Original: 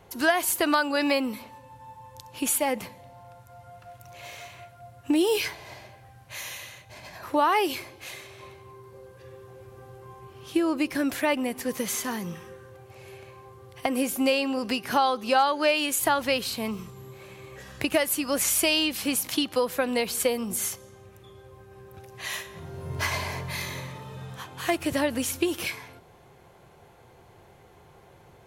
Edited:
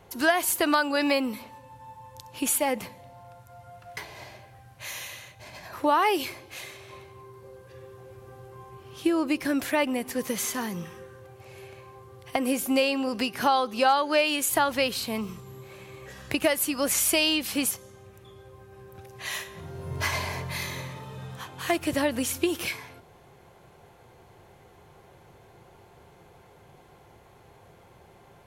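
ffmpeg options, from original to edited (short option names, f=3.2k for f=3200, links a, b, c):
-filter_complex "[0:a]asplit=3[a][b][c];[a]atrim=end=3.972[d];[b]atrim=start=5.468:end=19.212[e];[c]atrim=start=20.698[f];[d][e]acrossfade=d=0.004:c1=hsin:c2=hsin[g];[g][f]acrossfade=d=0.004:c1=hsin:c2=hsin"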